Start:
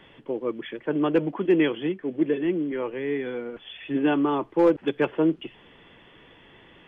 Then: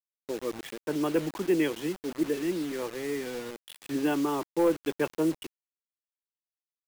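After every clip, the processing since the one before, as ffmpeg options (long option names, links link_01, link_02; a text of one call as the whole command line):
ffmpeg -i in.wav -af "agate=range=-33dB:threshold=-41dB:ratio=3:detection=peak,acrusher=bits=5:mix=0:aa=0.000001,volume=-5dB" out.wav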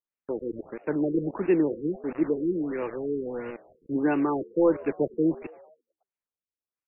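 ffmpeg -i in.wav -filter_complex "[0:a]asplit=6[link_01][link_02][link_03][link_04][link_05][link_06];[link_02]adelay=112,afreqshift=76,volume=-21dB[link_07];[link_03]adelay=224,afreqshift=152,volume=-25.3dB[link_08];[link_04]adelay=336,afreqshift=228,volume=-29.6dB[link_09];[link_05]adelay=448,afreqshift=304,volume=-33.9dB[link_10];[link_06]adelay=560,afreqshift=380,volume=-38.2dB[link_11];[link_01][link_07][link_08][link_09][link_10][link_11]amix=inputs=6:normalize=0,afftfilt=real='re*lt(b*sr/1024,470*pow(2900/470,0.5+0.5*sin(2*PI*1.5*pts/sr)))':imag='im*lt(b*sr/1024,470*pow(2900/470,0.5+0.5*sin(2*PI*1.5*pts/sr)))':win_size=1024:overlap=0.75,volume=3dB" out.wav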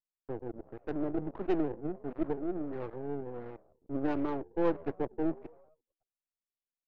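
ffmpeg -i in.wav -af "aeval=exprs='if(lt(val(0),0),0.251*val(0),val(0))':channel_layout=same,adynamicsmooth=sensitivity=1.5:basefreq=890,volume=-4dB" out.wav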